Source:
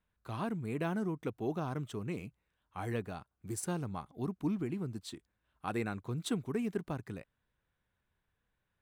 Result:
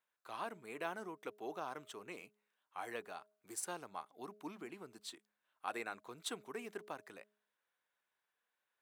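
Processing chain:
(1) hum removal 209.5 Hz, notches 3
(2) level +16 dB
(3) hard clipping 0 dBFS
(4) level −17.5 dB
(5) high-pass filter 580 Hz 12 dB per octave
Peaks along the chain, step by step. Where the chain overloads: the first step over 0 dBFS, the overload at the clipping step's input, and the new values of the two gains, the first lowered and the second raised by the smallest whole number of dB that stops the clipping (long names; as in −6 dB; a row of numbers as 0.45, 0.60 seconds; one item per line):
−21.5, −5.5, −5.5, −23.0, −24.0 dBFS
no step passes full scale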